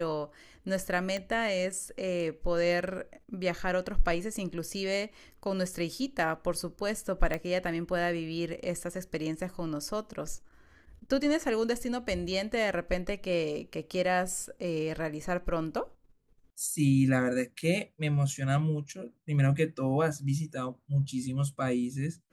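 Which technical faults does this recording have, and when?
1.17 pop -22 dBFS
7.34 pop -18 dBFS
17.61 gap 5 ms

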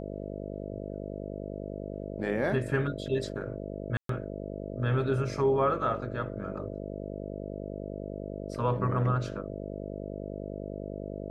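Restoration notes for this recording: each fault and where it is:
buzz 50 Hz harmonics 13 -38 dBFS
3.97–4.09 gap 0.123 s

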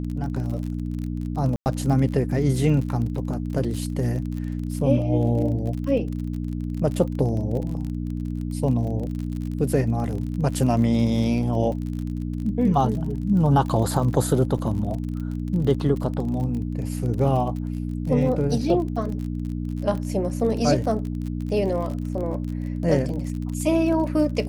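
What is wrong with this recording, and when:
crackle 37/s -30 dBFS
hum 60 Hz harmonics 5 -28 dBFS
1.56–1.66 gap 99 ms
14.58 gap 3.4 ms

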